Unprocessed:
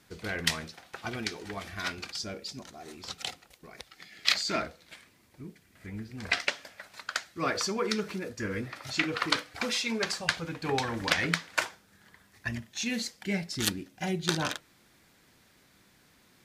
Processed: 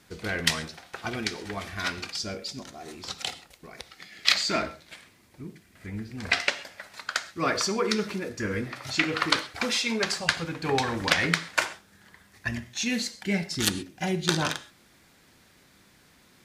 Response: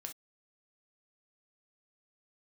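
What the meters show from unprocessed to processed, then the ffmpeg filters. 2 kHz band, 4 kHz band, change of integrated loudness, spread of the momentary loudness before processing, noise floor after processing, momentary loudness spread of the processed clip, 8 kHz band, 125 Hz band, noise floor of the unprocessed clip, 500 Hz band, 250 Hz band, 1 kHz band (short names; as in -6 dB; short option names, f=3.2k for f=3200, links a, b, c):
+4.0 dB, +4.0 dB, +4.0 dB, 17 LU, -59 dBFS, 18 LU, +4.0 dB, +3.5 dB, -63 dBFS, +4.0 dB, +3.5 dB, +4.0 dB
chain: -filter_complex "[0:a]asplit=2[a][b];[1:a]atrim=start_sample=2205,asetrate=22050,aresample=44100[c];[b][c]afir=irnorm=-1:irlink=0,volume=-7.5dB[d];[a][d]amix=inputs=2:normalize=0,volume=1dB"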